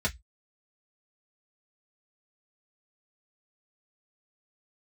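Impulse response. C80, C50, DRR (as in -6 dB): 36.5 dB, 23.0 dB, -4.5 dB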